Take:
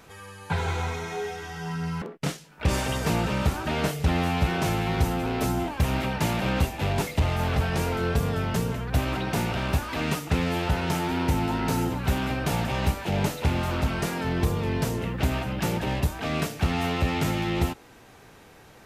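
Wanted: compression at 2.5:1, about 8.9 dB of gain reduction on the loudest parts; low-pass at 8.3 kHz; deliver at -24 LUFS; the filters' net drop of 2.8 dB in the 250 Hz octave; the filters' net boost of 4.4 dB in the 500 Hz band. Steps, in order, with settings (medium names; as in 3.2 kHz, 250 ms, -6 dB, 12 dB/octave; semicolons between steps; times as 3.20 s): low-pass 8.3 kHz; peaking EQ 250 Hz -6.5 dB; peaking EQ 500 Hz +7.5 dB; compression 2.5:1, threshold -32 dBFS; trim +9.5 dB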